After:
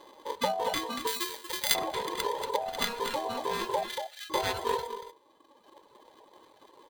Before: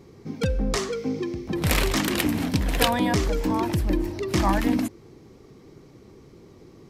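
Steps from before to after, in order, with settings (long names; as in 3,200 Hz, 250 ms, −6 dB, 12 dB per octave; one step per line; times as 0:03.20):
samples sorted by size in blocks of 16 samples
0:03.83–0:04.30: Butterworth high-pass 2,000 Hz
single-tap delay 235 ms −6 dB
speech leveller within 3 dB 0.5 s
0:01.07–0:01.75: spectral tilt +3.5 dB per octave
reverb reduction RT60 1.5 s
convolution reverb RT60 0.35 s, pre-delay 3 ms, DRR 13 dB
ring modulation 710 Hz
parametric band 4,100 Hz +12 dB 0.23 octaves
level −6 dB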